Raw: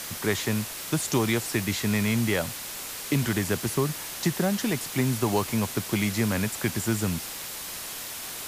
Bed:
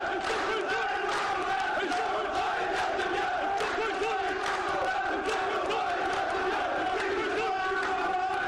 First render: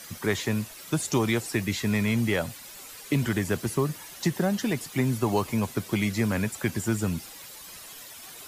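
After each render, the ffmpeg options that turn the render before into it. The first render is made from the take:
-af "afftdn=nr=11:nf=-37"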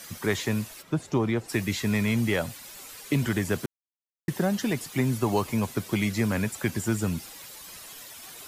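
-filter_complex "[0:a]asplit=3[a][b][c];[a]afade=t=out:st=0.81:d=0.02[d];[b]lowpass=f=1.2k:p=1,afade=t=in:st=0.81:d=0.02,afade=t=out:st=1.48:d=0.02[e];[c]afade=t=in:st=1.48:d=0.02[f];[d][e][f]amix=inputs=3:normalize=0,asplit=3[g][h][i];[g]atrim=end=3.66,asetpts=PTS-STARTPTS,afade=t=out:st=3.656:d=0.004:c=hsin[j];[h]atrim=start=3.66:end=4.28,asetpts=PTS-STARTPTS,volume=0[k];[i]atrim=start=4.28,asetpts=PTS-STARTPTS,afade=t=in:d=0.004:c=hsin[l];[j][k][l]concat=n=3:v=0:a=1"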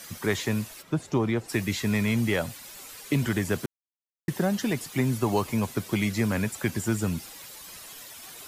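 -af anull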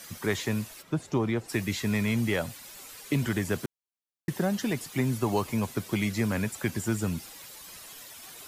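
-af "volume=-2dB"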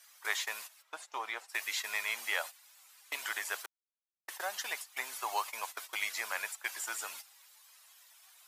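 -af "agate=range=-14dB:threshold=-34dB:ratio=16:detection=peak,highpass=f=780:w=0.5412,highpass=f=780:w=1.3066"

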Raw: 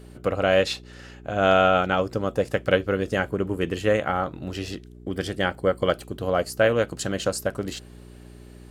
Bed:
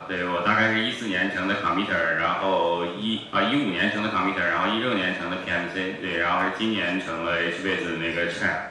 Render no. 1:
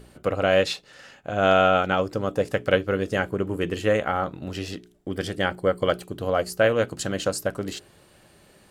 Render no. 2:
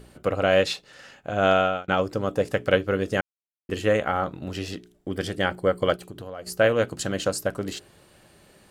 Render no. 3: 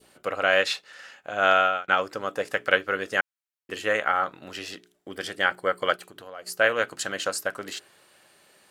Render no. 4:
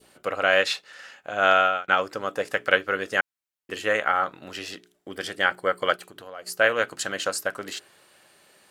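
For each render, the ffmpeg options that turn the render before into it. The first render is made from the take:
-af "bandreject=f=60:t=h:w=4,bandreject=f=120:t=h:w=4,bandreject=f=180:t=h:w=4,bandreject=f=240:t=h:w=4,bandreject=f=300:t=h:w=4,bandreject=f=360:t=h:w=4,bandreject=f=420:t=h:w=4"
-filter_complex "[0:a]asplit=3[a][b][c];[a]afade=t=out:st=5.95:d=0.02[d];[b]acompressor=threshold=-35dB:ratio=4:attack=3.2:release=140:knee=1:detection=peak,afade=t=in:st=5.95:d=0.02,afade=t=out:st=6.46:d=0.02[e];[c]afade=t=in:st=6.46:d=0.02[f];[d][e][f]amix=inputs=3:normalize=0,asplit=4[g][h][i][j];[g]atrim=end=1.88,asetpts=PTS-STARTPTS,afade=t=out:st=1.35:d=0.53:c=qsin[k];[h]atrim=start=1.88:end=3.21,asetpts=PTS-STARTPTS,afade=t=in:d=0.004:c=hsin,afade=t=out:st=1.326:d=0.004:c=hsin[l];[i]atrim=start=3.21:end=3.69,asetpts=PTS-STARTPTS,volume=0[m];[j]atrim=start=3.69,asetpts=PTS-STARTPTS,afade=t=in:d=0.004:c=hsin[n];[k][l][m][n]concat=n=4:v=0:a=1"
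-af "highpass=f=830:p=1,adynamicequalizer=threshold=0.0112:dfrequency=1600:dqfactor=1.1:tfrequency=1600:tqfactor=1.1:attack=5:release=100:ratio=0.375:range=3.5:mode=boostabove:tftype=bell"
-af "volume=1dB"

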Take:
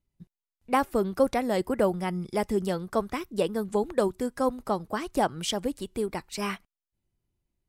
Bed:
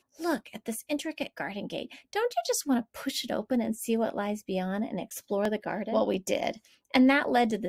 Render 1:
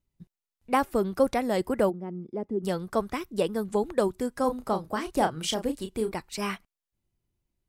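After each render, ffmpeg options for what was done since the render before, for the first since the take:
-filter_complex "[0:a]asplit=3[a][b][c];[a]afade=t=out:st=1.89:d=0.02[d];[b]bandpass=f=300:t=q:w=1.6,afade=t=in:st=1.89:d=0.02,afade=t=out:st=2.63:d=0.02[e];[c]afade=t=in:st=2.63:d=0.02[f];[d][e][f]amix=inputs=3:normalize=0,asettb=1/sr,asplit=3[g][h][i];[g]atrim=end=4.414[j];[h]atrim=start=4.41:end=6.12,asetpts=PTS-STARTPTS,afade=t=in:d=0.004:c=qsin,afade=t=out:st=1.706:d=0.004:c=qsin,asplit=2[k][l];[l]adelay=32,volume=-8dB[m];[k][m]amix=inputs=2:normalize=0,atrim=end_sample=75411[n];[i]atrim=start=6.116[o];[j][n]acrossfade=d=0.004:c1=hsin:c2=qsin[p];[p][o]acrossfade=d=0.004:c1=qsin:c2=hsin"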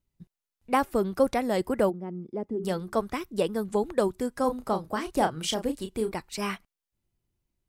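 -filter_complex "[0:a]asettb=1/sr,asplit=3[a][b][c];[a]atrim=end=2.534[d];[b]atrim=start=2.53:end=3.03,asetpts=PTS-STARTPTS,afade=t=in:d=0.004:c=qsin,afade=t=out:st=0.496:d=0.004:c=qsin,bandreject=f=50:t=h:w=6,bandreject=f=100:t=h:w=6,bandreject=f=150:t=h:w=6,bandreject=f=200:t=h:w=6,bandreject=f=250:t=h:w=6,bandreject=f=300:t=h:w=6,bandreject=f=350:t=h:w=6,bandreject=f=400:t=h:w=6[e];[c]atrim=start=3.026[f];[d][e]acrossfade=d=0.004:c1=hsin:c2=qsin[g];[g][f]acrossfade=d=0.004:c1=qsin:c2=hsin"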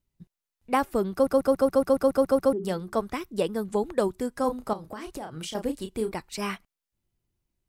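-filter_complex "[0:a]asettb=1/sr,asplit=3[a][b][c];[a]atrim=end=4.734[d];[b]atrim=start=4.73:end=5.55,asetpts=PTS-STARTPTS,afade=t=in:d=0.004:c=qsin,afade=t=out:st=0.816:d=0.004:c=qsin,acompressor=threshold=-32dB:ratio=16:attack=3.2:release=140:knee=1:detection=peak[e];[c]atrim=start=5.546[f];[d][e]acrossfade=d=0.004:c1=hsin:c2=qsin[g];[g][f]acrossfade=d=0.004:c1=qsin:c2=hsin,asplit=11[h][i][j][k][l][m][n][o][p][q][r];[h]atrim=end=1.272[s];[i]atrim=start=1.128:end=1.272[t];[j]atrim=start=1.128:end=1.272[u];[k]atrim=start=1.128:end=1.272[v];[l]atrim=start=1.128:end=1.272[w];[m]atrim=start=1.128:end=1.272[x];[n]atrim=start=1.128:end=1.272[y];[o]atrim=start=1.128:end=1.272[z];[p]atrim=start=1.128:end=1.272[aa];[q]atrim=start=1.128:end=1.272[ab];[r]atrim=start=2.528[ac];[s][t]acrossfade=d=0.004:c1=hsin:c2=hsin[ad];[ad][u]acrossfade=d=0.004:c1=hsin:c2=hsin[ae];[ae][v]acrossfade=d=0.004:c1=hsin:c2=hsin[af];[af][w]acrossfade=d=0.004:c1=hsin:c2=hsin[ag];[ag][x]acrossfade=d=0.004:c1=hsin:c2=hsin[ah];[ah][y]acrossfade=d=0.004:c1=hsin:c2=hsin[ai];[ai][z]acrossfade=d=0.004:c1=hsin:c2=hsin[aj];[aj][aa]acrossfade=d=0.004:c1=hsin:c2=hsin[ak];[ak][ab]acrossfade=d=0.004:c1=hsin:c2=hsin[al];[al][ac]acrossfade=d=0.004:c1=hsin:c2=hsin"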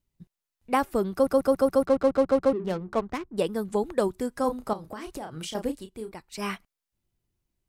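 -filter_complex "[0:a]asplit=3[a][b][c];[a]afade=t=out:st=1.84:d=0.02[d];[b]adynamicsmooth=sensitivity=7:basefreq=510,afade=t=in:st=1.84:d=0.02,afade=t=out:st=3.37:d=0.02[e];[c]afade=t=in:st=3.37:d=0.02[f];[d][e][f]amix=inputs=3:normalize=0,asplit=3[g][h][i];[g]atrim=end=5.87,asetpts=PTS-STARTPTS,afade=t=out:st=5.67:d=0.2:silence=0.375837[j];[h]atrim=start=5.87:end=6.27,asetpts=PTS-STARTPTS,volume=-8.5dB[k];[i]atrim=start=6.27,asetpts=PTS-STARTPTS,afade=t=in:d=0.2:silence=0.375837[l];[j][k][l]concat=n=3:v=0:a=1"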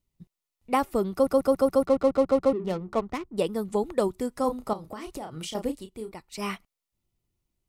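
-af "bandreject=f=1.6k:w=6.8"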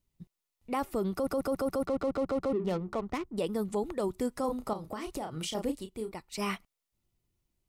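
-af "alimiter=limit=-22dB:level=0:latency=1:release=42"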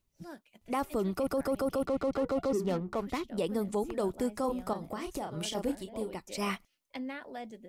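-filter_complex "[1:a]volume=-18dB[a];[0:a][a]amix=inputs=2:normalize=0"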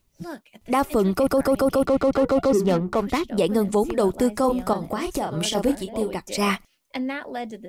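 -af "volume=11dB"

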